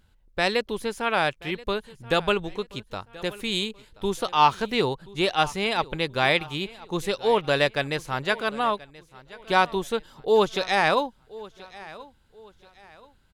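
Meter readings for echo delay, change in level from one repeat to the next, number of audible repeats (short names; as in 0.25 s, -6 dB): 1.03 s, -9.5 dB, 2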